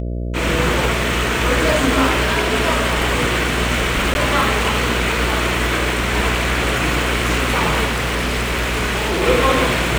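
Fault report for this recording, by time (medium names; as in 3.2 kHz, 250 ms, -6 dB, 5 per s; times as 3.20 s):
buzz 60 Hz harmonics 11 -23 dBFS
4.14–4.15 s: dropout 11 ms
7.85–9.23 s: clipped -16 dBFS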